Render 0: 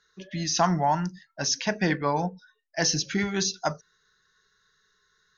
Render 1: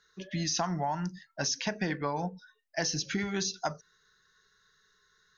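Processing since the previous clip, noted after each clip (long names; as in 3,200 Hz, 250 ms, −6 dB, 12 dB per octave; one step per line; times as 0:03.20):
downward compressor 6 to 1, threshold −28 dBFS, peak gain reduction 11 dB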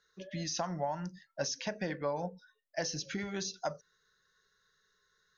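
parametric band 550 Hz +11.5 dB 0.31 octaves
level −6 dB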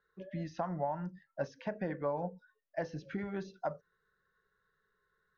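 low-pass filter 1,500 Hz 12 dB per octave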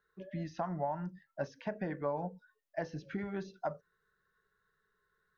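notch filter 520 Hz, Q 12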